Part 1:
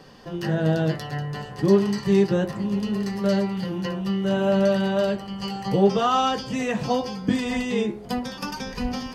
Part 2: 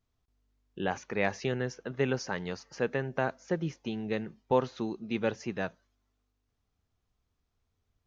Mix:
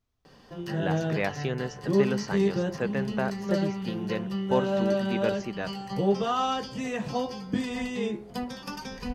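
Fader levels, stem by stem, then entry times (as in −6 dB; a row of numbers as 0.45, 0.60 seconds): −6.0, 0.0 decibels; 0.25, 0.00 seconds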